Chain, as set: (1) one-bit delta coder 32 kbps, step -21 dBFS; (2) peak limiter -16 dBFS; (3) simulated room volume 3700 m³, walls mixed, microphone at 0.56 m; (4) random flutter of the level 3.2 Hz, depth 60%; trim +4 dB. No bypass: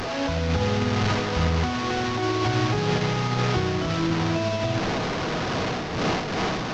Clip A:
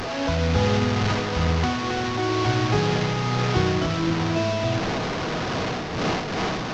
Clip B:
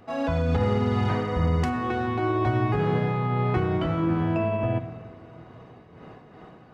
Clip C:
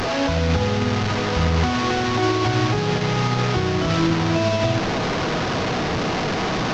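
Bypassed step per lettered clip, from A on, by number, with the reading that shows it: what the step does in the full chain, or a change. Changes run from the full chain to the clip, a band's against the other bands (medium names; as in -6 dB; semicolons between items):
2, crest factor change +2.0 dB; 1, 4 kHz band -12.5 dB; 4, crest factor change -2.0 dB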